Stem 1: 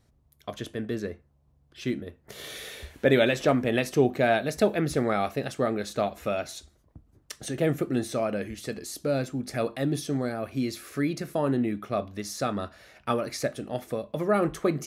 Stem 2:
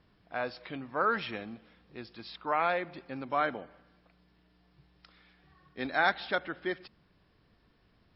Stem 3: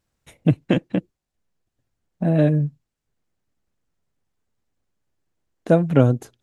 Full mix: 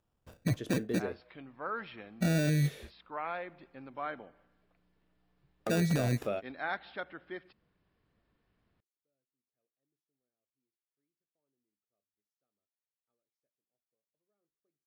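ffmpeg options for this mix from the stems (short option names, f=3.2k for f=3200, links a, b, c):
-filter_complex "[0:a]equalizer=f=420:t=o:w=1.1:g=6.5,volume=-9dB[a];[1:a]lowpass=3.5k,adelay=650,volume=-9dB[b];[2:a]lowpass=f=3.4k:p=1,alimiter=limit=-13.5dB:level=0:latency=1:release=44,acrusher=samples=21:mix=1:aa=0.000001,volume=-3.5dB,asplit=2[c][d];[d]apad=whole_len=655640[e];[a][e]sidechaingate=range=-57dB:threshold=-55dB:ratio=16:detection=peak[f];[f][b][c]amix=inputs=3:normalize=0,alimiter=limit=-21.5dB:level=0:latency=1:release=12"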